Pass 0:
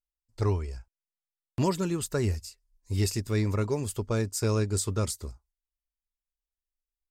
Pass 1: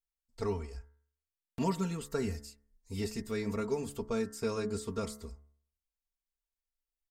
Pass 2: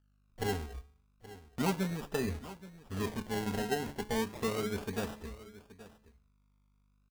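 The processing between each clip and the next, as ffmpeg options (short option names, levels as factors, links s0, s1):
-filter_complex "[0:a]acrossover=split=2900[s0][s1];[s1]acompressor=threshold=0.01:ratio=4:attack=1:release=60[s2];[s0][s2]amix=inputs=2:normalize=0,aecho=1:1:4.4:0.81,bandreject=f=71.54:t=h:w=4,bandreject=f=143.08:t=h:w=4,bandreject=f=214.62:t=h:w=4,bandreject=f=286.16:t=h:w=4,bandreject=f=357.7:t=h:w=4,bandreject=f=429.24:t=h:w=4,bandreject=f=500.78:t=h:w=4,bandreject=f=572.32:t=h:w=4,bandreject=f=643.86:t=h:w=4,bandreject=f=715.4:t=h:w=4,bandreject=f=786.94:t=h:w=4,bandreject=f=858.48:t=h:w=4,bandreject=f=930.02:t=h:w=4,bandreject=f=1001.56:t=h:w=4,bandreject=f=1073.1:t=h:w=4,bandreject=f=1144.64:t=h:w=4,bandreject=f=1216.18:t=h:w=4,bandreject=f=1287.72:t=h:w=4,bandreject=f=1359.26:t=h:w=4,bandreject=f=1430.8:t=h:w=4,bandreject=f=1502.34:t=h:w=4,bandreject=f=1573.88:t=h:w=4,bandreject=f=1645.42:t=h:w=4,bandreject=f=1716.96:t=h:w=4,bandreject=f=1788.5:t=h:w=4,bandreject=f=1860.04:t=h:w=4,bandreject=f=1931.58:t=h:w=4,bandreject=f=2003.12:t=h:w=4,bandreject=f=2074.66:t=h:w=4,bandreject=f=2146.2:t=h:w=4,volume=0.501"
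-af "aeval=exprs='val(0)+0.000355*(sin(2*PI*50*n/s)+sin(2*PI*2*50*n/s)/2+sin(2*PI*3*50*n/s)/3+sin(2*PI*4*50*n/s)/4+sin(2*PI*5*50*n/s)/5)':c=same,acrusher=samples=29:mix=1:aa=0.000001:lfo=1:lforange=17.4:lforate=0.34,aecho=1:1:825:0.141"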